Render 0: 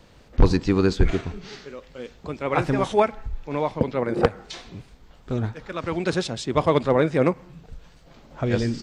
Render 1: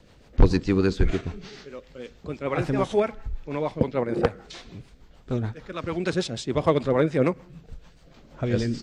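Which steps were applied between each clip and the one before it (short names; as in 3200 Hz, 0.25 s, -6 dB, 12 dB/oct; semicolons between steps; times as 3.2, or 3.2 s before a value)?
rotary speaker horn 6.7 Hz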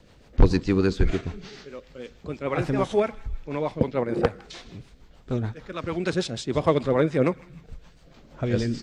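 thin delay 0.157 s, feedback 43%, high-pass 1600 Hz, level -19 dB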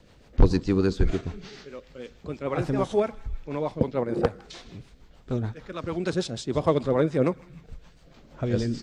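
dynamic EQ 2200 Hz, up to -5 dB, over -45 dBFS, Q 1.2; gain -1 dB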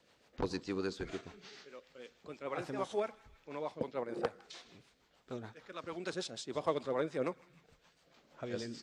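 HPF 630 Hz 6 dB/oct; gain -7 dB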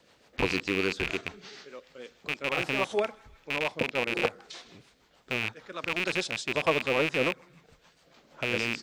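rattling part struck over -51 dBFS, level -24 dBFS; gain +7 dB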